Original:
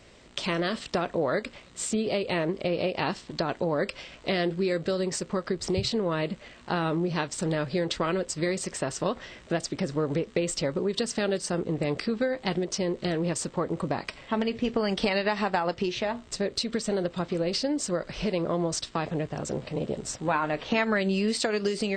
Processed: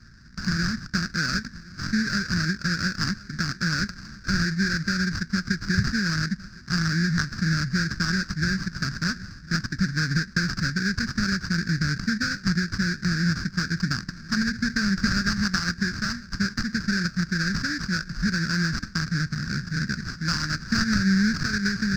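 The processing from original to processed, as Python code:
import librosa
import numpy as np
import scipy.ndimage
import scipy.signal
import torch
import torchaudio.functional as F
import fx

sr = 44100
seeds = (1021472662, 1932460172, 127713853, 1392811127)

y = fx.echo_feedback(x, sr, ms=1057, feedback_pct=56, wet_db=-21)
y = fx.sample_hold(y, sr, seeds[0], rate_hz=2000.0, jitter_pct=20)
y = fx.curve_eq(y, sr, hz=(200.0, 500.0, 890.0, 1600.0, 3100.0, 4900.0, 10000.0), db=(0, -30, -29, 6, -24, 8, -24))
y = y * 10.0 ** (7.5 / 20.0)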